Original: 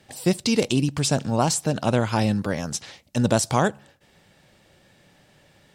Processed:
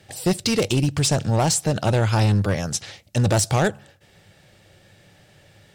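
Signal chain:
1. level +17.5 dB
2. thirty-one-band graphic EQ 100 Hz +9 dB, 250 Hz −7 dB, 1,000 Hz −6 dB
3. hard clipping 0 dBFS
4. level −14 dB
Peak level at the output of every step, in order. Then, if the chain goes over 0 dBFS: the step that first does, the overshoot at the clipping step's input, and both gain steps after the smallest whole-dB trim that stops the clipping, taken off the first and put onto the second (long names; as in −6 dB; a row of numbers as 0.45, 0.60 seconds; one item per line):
+10.5, +9.5, 0.0, −14.0 dBFS
step 1, 9.5 dB
step 1 +7.5 dB, step 4 −4 dB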